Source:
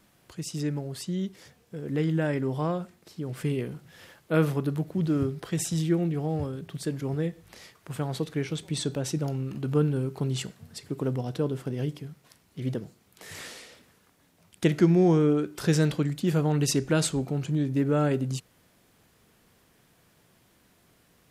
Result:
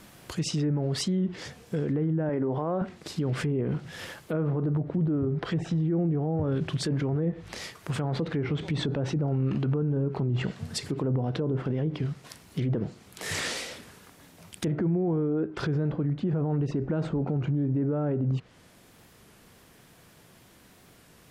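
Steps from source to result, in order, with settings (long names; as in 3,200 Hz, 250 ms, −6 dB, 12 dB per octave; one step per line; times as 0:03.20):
treble cut that deepens with the level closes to 1,000 Hz, closed at −24.5 dBFS
0:02.29–0:02.82: high-pass filter 350 Hz 6 dB per octave
speech leveller within 4 dB 0.5 s
brickwall limiter −28 dBFS, peak gain reduction 17.5 dB
wow of a warped record 33 1/3 rpm, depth 100 cents
level +8 dB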